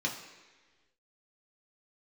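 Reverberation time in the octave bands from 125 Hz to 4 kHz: 1.3 s, 1.4 s, 1.5 s, 1.3 s, 1.5 s, 1.3 s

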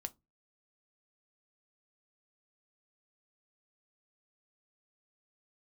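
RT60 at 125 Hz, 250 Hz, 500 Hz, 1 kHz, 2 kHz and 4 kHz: 0.40 s, 0.30 s, 0.20 s, 0.20 s, 0.15 s, 0.15 s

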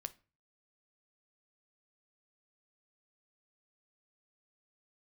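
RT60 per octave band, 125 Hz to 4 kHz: 0.55 s, 0.45 s, 0.35 s, 0.35 s, 0.35 s, 0.30 s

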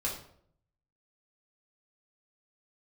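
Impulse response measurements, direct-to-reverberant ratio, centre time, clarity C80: -4.5 dB, 31 ms, 9.5 dB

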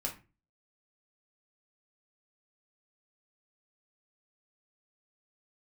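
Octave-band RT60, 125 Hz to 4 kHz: 0.50 s, 0.45 s, 0.35 s, 0.30 s, 0.30 s, 0.25 s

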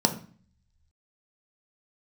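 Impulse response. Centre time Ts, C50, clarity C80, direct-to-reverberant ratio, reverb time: 10 ms, 12.0 dB, 16.5 dB, 4.5 dB, 0.45 s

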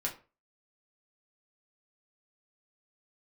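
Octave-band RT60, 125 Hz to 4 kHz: 0.35 s, 0.35 s, 0.35 s, 0.35 s, 0.30 s, 0.25 s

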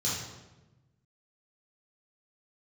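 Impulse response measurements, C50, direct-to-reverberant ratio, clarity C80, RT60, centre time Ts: 0.5 dB, -8.5 dB, 4.0 dB, 1.1 s, 68 ms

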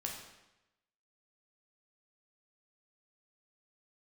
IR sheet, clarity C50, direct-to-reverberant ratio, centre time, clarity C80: 4.0 dB, -1.0 dB, 42 ms, 6.0 dB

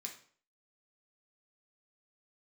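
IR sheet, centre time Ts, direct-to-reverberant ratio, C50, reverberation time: 18 ms, 0.0 dB, 8.5 dB, 0.50 s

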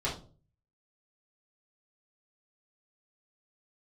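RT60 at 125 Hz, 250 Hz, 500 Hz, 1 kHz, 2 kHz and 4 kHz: 0.70 s, 0.50 s, 0.45 s, 0.35 s, 0.25 s, 0.30 s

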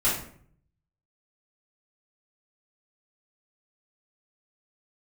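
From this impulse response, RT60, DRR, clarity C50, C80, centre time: 0.55 s, -10.5 dB, 4.0 dB, 9.0 dB, 40 ms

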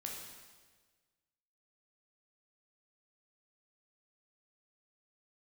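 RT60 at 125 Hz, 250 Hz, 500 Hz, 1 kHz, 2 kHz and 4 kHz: 1.6 s, 1.5 s, 1.5 s, 1.4 s, 1.3 s, 1.3 s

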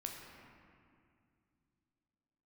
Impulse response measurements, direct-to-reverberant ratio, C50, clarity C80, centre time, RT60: 0.5 dB, 2.5 dB, 3.5 dB, 87 ms, 2.3 s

